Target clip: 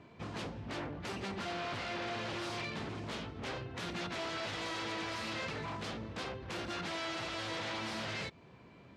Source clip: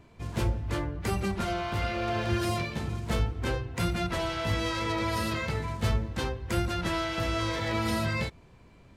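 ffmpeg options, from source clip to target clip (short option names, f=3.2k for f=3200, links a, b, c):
-filter_complex "[0:a]acrossover=split=2700[a][b];[a]alimiter=level_in=3dB:limit=-24dB:level=0:latency=1:release=261,volume=-3dB[c];[c][b]amix=inputs=2:normalize=0,aeval=exprs='0.02*(abs(mod(val(0)/0.02+3,4)-2)-1)':c=same,highpass=130,lowpass=4.5k,volume=1dB"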